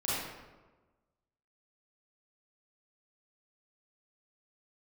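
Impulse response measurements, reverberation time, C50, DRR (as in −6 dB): 1.2 s, −4.5 dB, −9.5 dB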